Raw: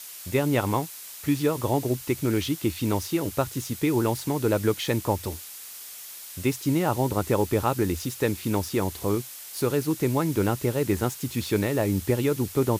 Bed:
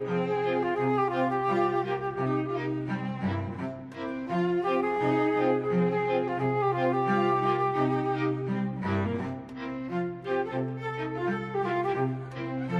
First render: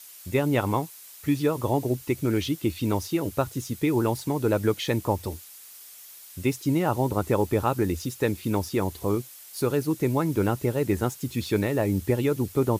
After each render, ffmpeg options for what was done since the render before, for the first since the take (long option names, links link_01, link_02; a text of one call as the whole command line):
ffmpeg -i in.wav -af "afftdn=noise_reduction=7:noise_floor=-41" out.wav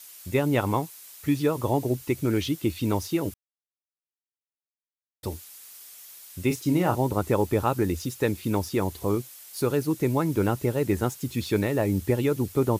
ffmpeg -i in.wav -filter_complex "[0:a]asettb=1/sr,asplit=3[link_01][link_02][link_03];[link_01]atrim=end=6.474[link_04];[link_02]atrim=start=6.47:end=6.95,asetpts=PTS-STARTPTS,afade=type=in:duration=0.004:curve=qsin,afade=type=out:start_time=0.476:duration=0.004:curve=qsin,asplit=2[link_05][link_06];[link_06]adelay=34,volume=-7dB[link_07];[link_05][link_07]amix=inputs=2:normalize=0,atrim=end_sample=21168[link_08];[link_03]atrim=start=6.946[link_09];[link_04][link_08]acrossfade=duration=0.004:curve1=hsin:curve2=qsin[link_10];[link_10][link_09]acrossfade=duration=0.004:curve1=qsin:curve2=hsin,asplit=3[link_11][link_12][link_13];[link_11]atrim=end=3.34,asetpts=PTS-STARTPTS,afade=type=out:start_time=3.336:duration=0.004:curve=hsin[link_14];[link_12]atrim=start=3.34:end=5.23,asetpts=PTS-STARTPTS,volume=0[link_15];[link_13]atrim=start=5.23,asetpts=PTS-STARTPTS,afade=type=in:duration=0.004:curve=hsin[link_16];[link_14][link_15][link_16]concat=n=3:v=0:a=1" out.wav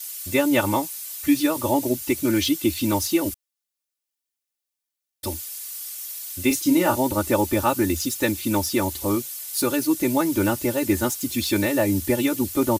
ffmpeg -i in.wav -af "highshelf=frequency=2800:gain=9.5,aecho=1:1:3.4:1" out.wav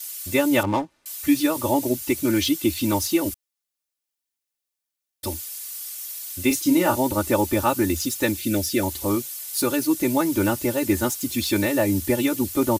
ffmpeg -i in.wav -filter_complex "[0:a]asettb=1/sr,asplit=3[link_01][link_02][link_03];[link_01]atrim=end=0.634[link_04];[link_02]atrim=start=0.63:end=1.06,asetpts=PTS-STARTPTS,afade=type=in:duration=0.004:curve=qsin,afade=type=out:start_time=0.426:duration=0.004:curve=qsin,adynamicsmooth=sensitivity=2.5:basefreq=830[link_05];[link_03]atrim=start=1.056[link_06];[link_04][link_05]acrossfade=duration=0.004:curve1=hsin:curve2=qsin[link_07];[link_07][link_06]acrossfade=duration=0.004:curve1=qsin:curve2=hsin,asettb=1/sr,asplit=3[link_08][link_09][link_10];[link_08]atrim=end=8.374[link_11];[link_09]atrim=start=8.37:end=8.83,asetpts=PTS-STARTPTS,afade=type=in:duration=0.004:curve=qsin,afade=type=out:start_time=0.456:duration=0.004:curve=qsin,asuperstop=centerf=1000:order=4:qfactor=1.5[link_12];[link_10]atrim=start=8.826[link_13];[link_11][link_12]acrossfade=duration=0.004:curve1=hsin:curve2=qsin[link_14];[link_14][link_13]acrossfade=duration=0.004:curve1=qsin:curve2=hsin" out.wav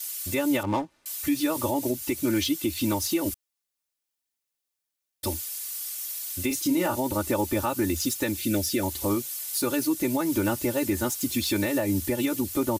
ffmpeg -i in.wav -af "alimiter=limit=-16dB:level=0:latency=1:release=182" out.wav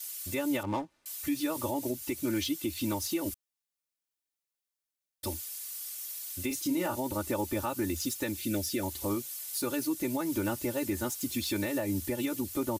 ffmpeg -i in.wav -af "volume=-6dB" out.wav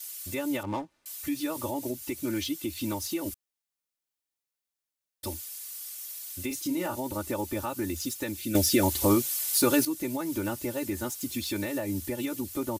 ffmpeg -i in.wav -filter_complex "[0:a]asplit=3[link_01][link_02][link_03];[link_01]atrim=end=8.552[link_04];[link_02]atrim=start=8.548:end=9.852,asetpts=PTS-STARTPTS,volume=9.5dB[link_05];[link_03]atrim=start=9.848[link_06];[link_04][link_05]acrossfade=duration=0.004:curve1=hsin:curve2=hsin[link_07];[link_07][link_06]acrossfade=duration=0.004:curve1=hsin:curve2=hsin" out.wav